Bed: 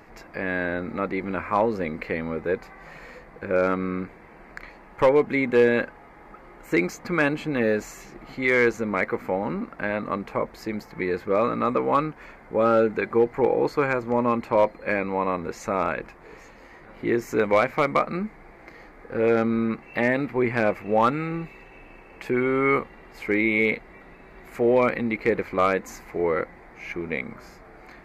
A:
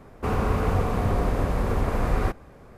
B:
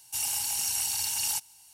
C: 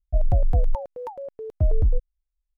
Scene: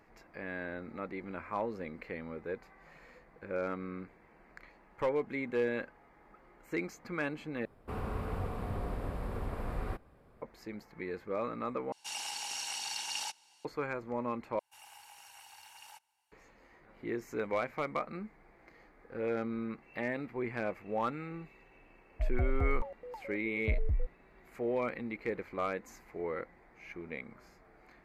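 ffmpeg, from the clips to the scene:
-filter_complex "[2:a]asplit=2[s0][s1];[0:a]volume=0.211[s2];[1:a]equalizer=f=6300:w=3.5:g=-10.5[s3];[s0]highpass=340,lowpass=4000[s4];[s1]acrossover=split=520 2500:gain=0.112 1 0.0891[s5][s6][s7];[s5][s6][s7]amix=inputs=3:normalize=0[s8];[s2]asplit=4[s9][s10][s11][s12];[s9]atrim=end=7.654[s13];[s3]atrim=end=2.77,asetpts=PTS-STARTPTS,volume=0.211[s14];[s10]atrim=start=10.416:end=11.924[s15];[s4]atrim=end=1.73[s16];[s11]atrim=start=13.646:end=14.594[s17];[s8]atrim=end=1.73,asetpts=PTS-STARTPTS,volume=0.316[s18];[s12]atrim=start=16.316[s19];[3:a]atrim=end=2.57,asetpts=PTS-STARTPTS,volume=0.266,afade=t=in:d=0.004:c=hsin,afade=t=out:st=2.566:d=0.004:c=hsin,adelay=22070[s20];[s13][s14]acrossfade=d=0.004:c1=hsin:c2=hsin[s21];[s21][s15]acrossfade=d=0.004:c1=hsin:c2=hsin[s22];[s22][s16]acrossfade=d=0.004:c1=hsin:c2=hsin[s23];[s23][s17]acrossfade=d=0.004:c1=hsin:c2=hsin[s24];[s24][s18]acrossfade=d=0.004:c1=hsin:c2=hsin[s25];[s25][s19]acrossfade=d=0.004:c1=hsin:c2=hsin[s26];[s26][s20]amix=inputs=2:normalize=0"

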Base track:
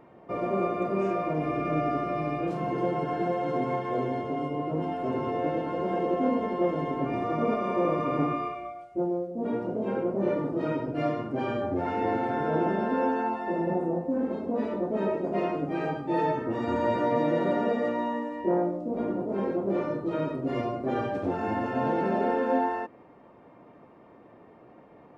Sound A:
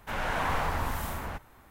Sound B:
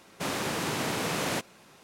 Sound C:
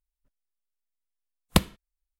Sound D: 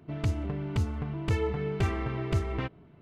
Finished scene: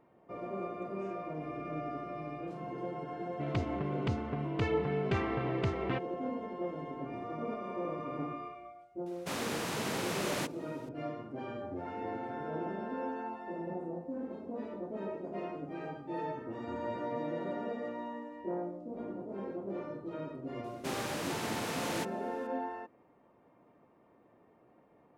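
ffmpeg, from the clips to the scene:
-filter_complex "[2:a]asplit=2[s0][s1];[0:a]volume=0.266[s2];[4:a]highpass=140,lowpass=4200,atrim=end=3.01,asetpts=PTS-STARTPTS,volume=0.944,afade=t=in:d=0.004:c=hsin,afade=t=out:st=3.006:d=0.004:c=hsin,adelay=3310[s3];[s0]atrim=end=1.83,asetpts=PTS-STARTPTS,volume=0.531,afade=t=in:d=0.004:c=hsin,afade=t=out:st=1.826:d=0.004:c=hsin,adelay=399546S[s4];[s1]atrim=end=1.83,asetpts=PTS-STARTPTS,volume=0.447,afade=t=in:d=0.004:c=hsin,afade=t=out:st=1.826:d=0.004:c=hsin,adelay=20640[s5];[s2][s3][s4][s5]amix=inputs=4:normalize=0"

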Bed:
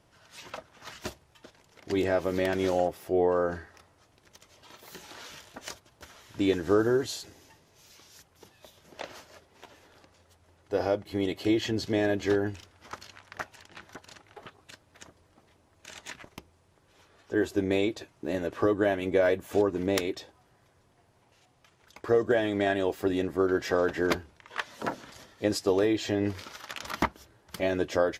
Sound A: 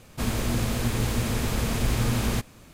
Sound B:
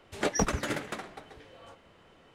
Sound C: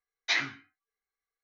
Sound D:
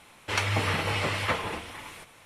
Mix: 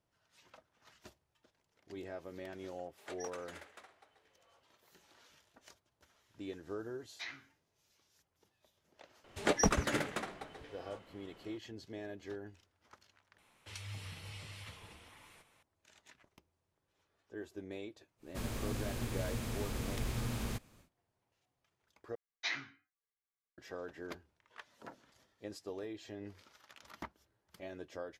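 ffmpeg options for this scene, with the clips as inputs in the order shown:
-filter_complex "[2:a]asplit=2[s0][s1];[3:a]asplit=2[s2][s3];[0:a]volume=0.112[s4];[s0]highpass=520[s5];[4:a]acrossover=split=160|3000[s6][s7][s8];[s7]acompressor=threshold=0.00891:ratio=6:attack=3.2:release=140:knee=2.83:detection=peak[s9];[s6][s9][s8]amix=inputs=3:normalize=0[s10];[s4]asplit=3[s11][s12][s13];[s11]atrim=end=13.384[s14];[s10]atrim=end=2.25,asetpts=PTS-STARTPTS,volume=0.178[s15];[s12]atrim=start=15.626:end=22.154[s16];[s3]atrim=end=1.43,asetpts=PTS-STARTPTS,volume=0.316[s17];[s13]atrim=start=23.576[s18];[s5]atrim=end=2.34,asetpts=PTS-STARTPTS,volume=0.141,afade=t=in:d=0.004:c=hsin,afade=t=out:st=2.336:d=0.004:c=hsin,adelay=2850[s19];[s2]atrim=end=1.43,asetpts=PTS-STARTPTS,volume=0.133,afade=t=in:d=0.004:c=hsin,afade=t=out:st=1.426:d=0.004:c=hsin,adelay=6910[s20];[s1]atrim=end=2.34,asetpts=PTS-STARTPTS,volume=0.841,afade=t=in:d=0.004:c=hsin,afade=t=out:st=2.336:d=0.004:c=hsin,adelay=9240[s21];[1:a]atrim=end=2.73,asetpts=PTS-STARTPTS,volume=0.224,afade=t=in:d=0.1,afade=t=out:st=2.63:d=0.1,adelay=18170[s22];[s14][s15]acrossfade=d=0.004:c1=hsin:c2=hsin[s23];[s23][s16]acrossfade=d=0.004:c1=hsin:c2=hsin[s24];[s24][s17]acrossfade=d=0.004:c1=hsin:c2=hsin[s25];[s25][s18]acrossfade=d=0.004:c1=hsin:c2=hsin[s26];[s26][s19][s20][s21][s22]amix=inputs=5:normalize=0"

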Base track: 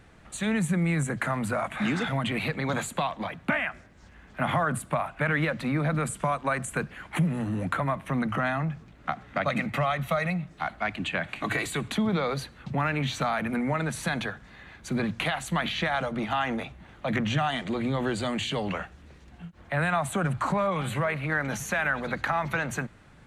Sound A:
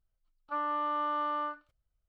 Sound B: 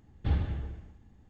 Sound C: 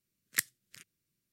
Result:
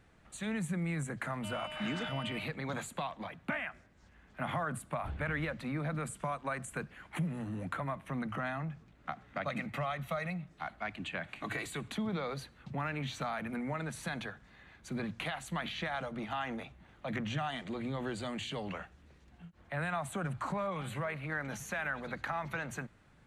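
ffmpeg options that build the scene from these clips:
-filter_complex "[0:a]volume=0.335[s0];[1:a]aeval=exprs='val(0)*sin(2*PI*1800*n/s)':c=same,atrim=end=2.08,asetpts=PTS-STARTPTS,volume=0.316,afade=t=in:d=0.004:c=hsin,afade=t=out:st=2.076:d=0.004:c=hsin,adelay=920[s1];[2:a]atrim=end=1.29,asetpts=PTS-STARTPTS,volume=0.2,afade=t=in:d=0.004:c=hsin,afade=t=out:st=1.286:d=0.004:c=hsin,adelay=4790[s2];[s0][s1][s2]amix=inputs=3:normalize=0"

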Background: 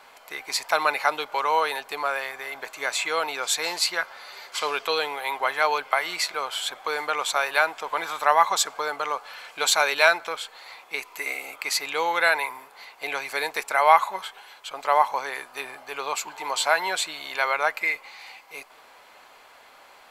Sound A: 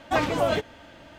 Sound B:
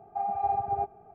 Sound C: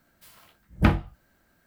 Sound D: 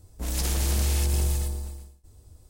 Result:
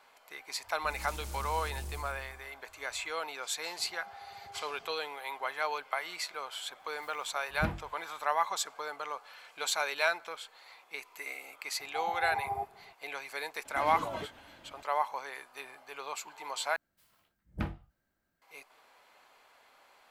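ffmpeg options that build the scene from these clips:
-filter_complex "[2:a]asplit=2[s0][s1];[3:a]asplit=2[s2][s3];[0:a]volume=0.282[s4];[s0]acompressor=threshold=0.00562:ratio=6:attack=3.2:release=140:knee=1:detection=peak[s5];[s2]alimiter=limit=0.237:level=0:latency=1:release=481[s6];[1:a]acompressor=threshold=0.0501:ratio=6:attack=3.2:release=140:knee=1:detection=peak[s7];[s4]asplit=2[s8][s9];[s8]atrim=end=16.764[s10];[s3]atrim=end=1.66,asetpts=PTS-STARTPTS,volume=0.168[s11];[s9]atrim=start=18.416[s12];[4:a]atrim=end=2.49,asetpts=PTS-STARTPTS,volume=0.15,afade=t=in:d=0.004:c=hsin,afade=t=out:st=2.486:d=0.004:c=hsin,adelay=640[s13];[s5]atrim=end=1.14,asetpts=PTS-STARTPTS,volume=0.668,afade=t=in:d=0.004:c=hsin,afade=t=out:st=1.136:d=0.004:c=hsin,adelay=3780[s14];[s6]atrim=end=1.66,asetpts=PTS-STARTPTS,volume=0.355,afade=t=in:d=0.004:c=hsin,afade=t=out:st=1.656:d=0.004:c=hsin,adelay=6800[s15];[s1]atrim=end=1.14,asetpts=PTS-STARTPTS,volume=0.501,afade=t=in:d=0.004:c=hsin,afade=t=out:st=1.136:d=0.004:c=hsin,adelay=11790[s16];[s7]atrim=end=1.18,asetpts=PTS-STARTPTS,volume=0.355,afade=t=in:d=0.004:c=hsin,afade=t=out:st=1.176:d=0.004:c=hsin,adelay=13650[s17];[s10][s11]acrossfade=d=0.004:c1=hsin:c2=hsin[s18];[s18][s12]acrossfade=d=0.004:c1=hsin:c2=hsin[s19];[s19][s13][s14][s15][s16][s17]amix=inputs=6:normalize=0"

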